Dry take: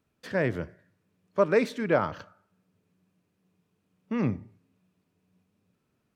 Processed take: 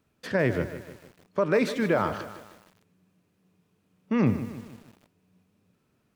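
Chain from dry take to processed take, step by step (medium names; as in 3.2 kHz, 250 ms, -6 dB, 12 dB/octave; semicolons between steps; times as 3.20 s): peak limiter -18 dBFS, peak gain reduction 8 dB; bit-crushed delay 153 ms, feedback 55%, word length 8-bit, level -12 dB; trim +4.5 dB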